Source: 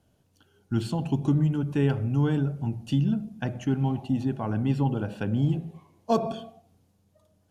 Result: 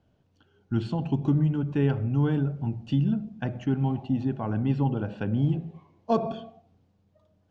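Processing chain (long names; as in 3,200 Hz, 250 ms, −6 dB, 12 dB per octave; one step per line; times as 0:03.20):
high-frequency loss of the air 160 metres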